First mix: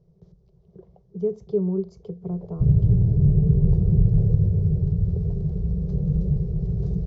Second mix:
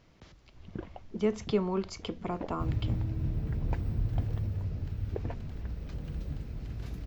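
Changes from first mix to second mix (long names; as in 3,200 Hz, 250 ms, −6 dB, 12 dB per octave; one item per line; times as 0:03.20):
first sound: remove high-pass filter 620 Hz 6 dB per octave
second sound −11.5 dB
master: remove drawn EQ curve 100 Hz 0 dB, 180 Hz +12 dB, 270 Hz −27 dB, 390 Hz +8 dB, 570 Hz −4 dB, 1,500 Hz −25 dB, 2,600 Hz −30 dB, 3,900 Hz −20 dB, 5,900 Hz −16 dB, 11,000 Hz −28 dB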